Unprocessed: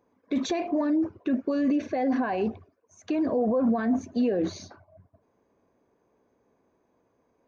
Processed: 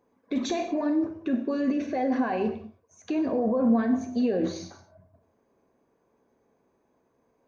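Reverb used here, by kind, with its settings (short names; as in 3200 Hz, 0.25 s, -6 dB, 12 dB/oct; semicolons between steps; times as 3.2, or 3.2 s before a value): non-linear reverb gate 0.25 s falling, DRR 5.5 dB; gain -1 dB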